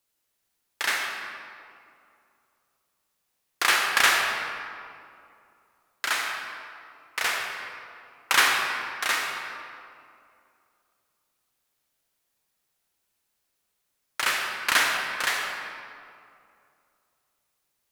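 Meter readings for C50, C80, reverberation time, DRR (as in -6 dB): 1.5 dB, 3.0 dB, 2.5 s, 0.5 dB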